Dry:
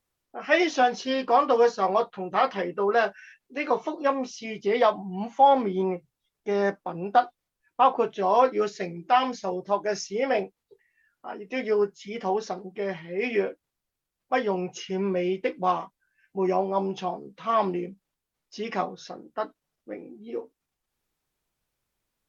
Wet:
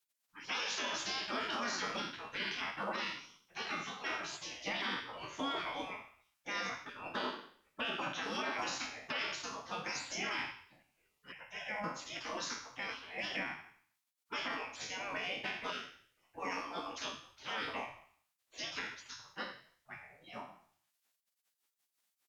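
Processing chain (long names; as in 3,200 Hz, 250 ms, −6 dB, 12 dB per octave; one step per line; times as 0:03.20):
peak hold with a decay on every bin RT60 0.55 s
mains-hum notches 50/100/150/200/250 Hz
gate on every frequency bin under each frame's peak −20 dB weak
brickwall limiter −30 dBFS, peak gain reduction 12 dB
0:11.32–0:11.84: phaser with its sweep stopped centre 1,200 Hz, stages 6
echo with shifted repeats 89 ms, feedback 35%, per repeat +50 Hz, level −17.5 dB
level +2 dB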